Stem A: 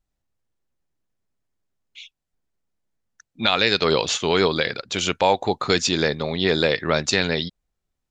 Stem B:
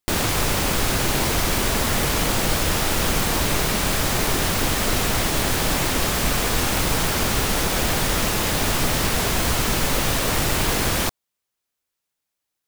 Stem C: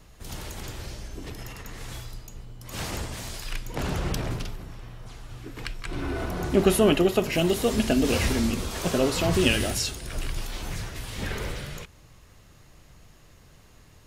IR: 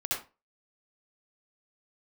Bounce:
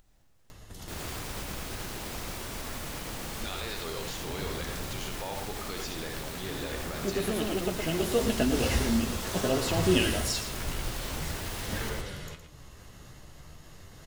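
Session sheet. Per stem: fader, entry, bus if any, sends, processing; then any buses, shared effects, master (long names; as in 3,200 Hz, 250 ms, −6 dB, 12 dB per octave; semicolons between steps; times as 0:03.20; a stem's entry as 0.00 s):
−17.0 dB, 0.00 s, bus A, send −12 dB, no echo send, no processing
−17.5 dB, 0.80 s, bus A, no send, echo send −3.5 dB, no processing
+0.5 dB, 0.50 s, no bus, no send, echo send −10.5 dB, notch filter 2,400 Hz, Q 10; flanger 0.44 Hz, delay 8.5 ms, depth 8.4 ms, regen +46%; automatic ducking −10 dB, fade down 1.95 s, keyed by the first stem
bus A: 0.0 dB, brickwall limiter −29.5 dBFS, peak gain reduction 10.5 dB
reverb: on, RT60 0.30 s, pre-delay 60 ms
echo: single-tap delay 114 ms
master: upward compression, threshold −39 dBFS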